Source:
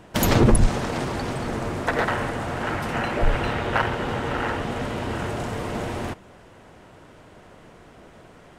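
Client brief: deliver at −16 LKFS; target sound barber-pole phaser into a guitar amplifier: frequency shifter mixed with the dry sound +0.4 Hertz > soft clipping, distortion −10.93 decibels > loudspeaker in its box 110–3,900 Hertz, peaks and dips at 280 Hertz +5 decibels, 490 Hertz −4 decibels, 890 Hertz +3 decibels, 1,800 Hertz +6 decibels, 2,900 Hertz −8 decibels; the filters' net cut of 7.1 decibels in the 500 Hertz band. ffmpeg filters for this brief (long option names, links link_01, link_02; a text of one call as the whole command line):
ffmpeg -i in.wav -filter_complex "[0:a]equalizer=frequency=500:width_type=o:gain=-8.5,asplit=2[link_01][link_02];[link_02]afreqshift=0.4[link_03];[link_01][link_03]amix=inputs=2:normalize=1,asoftclip=threshold=-21dB,highpass=110,equalizer=frequency=280:width_type=q:width=4:gain=5,equalizer=frequency=490:width_type=q:width=4:gain=-4,equalizer=frequency=890:width_type=q:width=4:gain=3,equalizer=frequency=1800:width_type=q:width=4:gain=6,equalizer=frequency=2900:width_type=q:width=4:gain=-8,lowpass=frequency=3900:width=0.5412,lowpass=frequency=3900:width=1.3066,volume=15dB" out.wav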